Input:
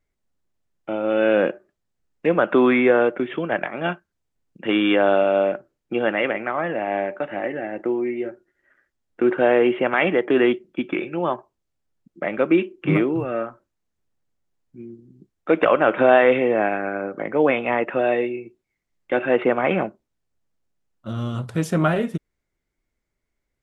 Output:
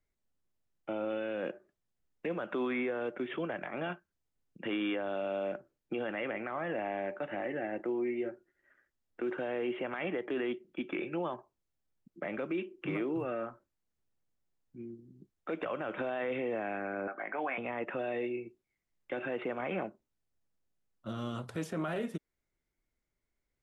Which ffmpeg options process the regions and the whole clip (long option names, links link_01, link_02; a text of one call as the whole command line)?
ffmpeg -i in.wav -filter_complex "[0:a]asettb=1/sr,asplit=3[link_01][link_02][link_03];[link_01]atrim=end=17.074[link_04];[link_02]atrim=start=17.07:end=17.58,asetpts=PTS-STARTPTS,afade=type=in:duration=0.004:curve=qsin,afade=type=out:start_time=0.506:duration=0.004:curve=qsin,highpass=450,equalizer=frequency=490:width_type=q:width=4:gain=-10,equalizer=frequency=730:width_type=q:width=4:gain=9,equalizer=frequency=1100:width_type=q:width=4:gain=4,equalizer=frequency=1600:width_type=q:width=4:gain=9,equalizer=frequency=2300:width_type=q:width=4:gain=6,equalizer=frequency=3600:width_type=q:width=4:gain=-3,lowpass=frequency=4000:width=0.5412,lowpass=frequency=4000:width=1.3066,asplit=2[link_05][link_06];[link_06]adelay=19,volume=-11dB[link_07];[link_05][link_07]amix=inputs=2:normalize=0,atrim=end_sample=22491[link_08];[link_03]atrim=start=17.576[link_09];[link_04][link_08]acrossfade=duration=0.004:curve1=hsin:curve2=qsin[link_10];[link_10][link_09]acrossfade=duration=0.004:curve1=qsin:curve2=hsin,acrossover=split=220|3300[link_11][link_12][link_13];[link_11]acompressor=threshold=-39dB:ratio=4[link_14];[link_12]acompressor=threshold=-24dB:ratio=4[link_15];[link_13]acompressor=threshold=-45dB:ratio=4[link_16];[link_14][link_15][link_16]amix=inputs=3:normalize=0,alimiter=limit=-20dB:level=0:latency=1:release=19,volume=-6.5dB" out.wav